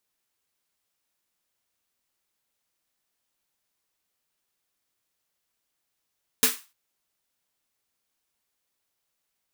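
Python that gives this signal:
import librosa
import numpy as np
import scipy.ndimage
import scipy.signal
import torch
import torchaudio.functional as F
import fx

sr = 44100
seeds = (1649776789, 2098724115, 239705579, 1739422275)

y = fx.drum_snare(sr, seeds[0], length_s=0.3, hz=250.0, second_hz=450.0, noise_db=10, noise_from_hz=1000.0, decay_s=0.2, noise_decay_s=0.31)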